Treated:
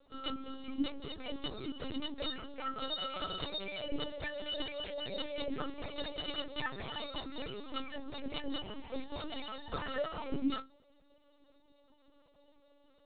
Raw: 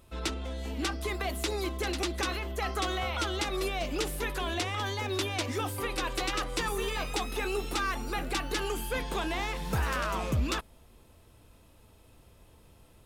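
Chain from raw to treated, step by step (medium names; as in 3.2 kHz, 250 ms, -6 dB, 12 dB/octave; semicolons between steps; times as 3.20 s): high-pass 110 Hz 6 dB/octave; high-order bell 1.5 kHz -8.5 dB; inharmonic resonator 270 Hz, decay 0.27 s, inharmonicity 0.03; in parallel at -10.5 dB: sample-and-hold 10×; on the sum: LPC vocoder at 8 kHz pitch kept; trim +11 dB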